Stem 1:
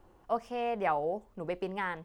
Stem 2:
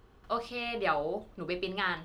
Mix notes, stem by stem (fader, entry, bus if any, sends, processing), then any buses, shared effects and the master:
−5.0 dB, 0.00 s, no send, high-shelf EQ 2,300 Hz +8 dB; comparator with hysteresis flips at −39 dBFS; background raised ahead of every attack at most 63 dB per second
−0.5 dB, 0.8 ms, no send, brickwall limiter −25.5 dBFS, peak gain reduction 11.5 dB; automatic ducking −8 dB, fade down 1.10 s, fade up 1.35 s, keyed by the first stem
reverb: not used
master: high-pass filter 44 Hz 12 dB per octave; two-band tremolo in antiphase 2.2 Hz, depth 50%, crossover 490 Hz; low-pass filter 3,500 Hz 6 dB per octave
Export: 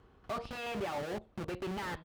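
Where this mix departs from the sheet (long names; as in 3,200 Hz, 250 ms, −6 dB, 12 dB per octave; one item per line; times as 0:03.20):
stem 2: polarity flipped
master: missing two-band tremolo in antiphase 2.2 Hz, depth 50%, crossover 490 Hz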